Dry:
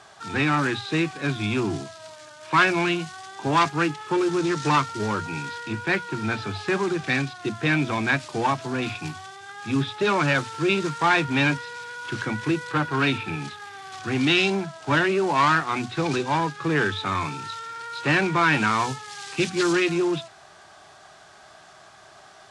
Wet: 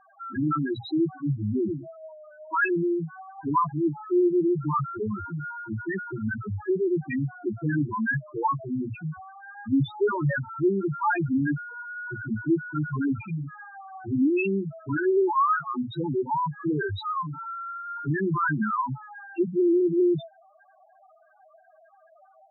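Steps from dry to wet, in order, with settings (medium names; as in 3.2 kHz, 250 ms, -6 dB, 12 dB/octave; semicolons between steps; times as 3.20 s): saturation -8 dBFS, distortion -27 dB; loudest bins only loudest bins 2; tone controls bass +2 dB, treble +7 dB; trim +2.5 dB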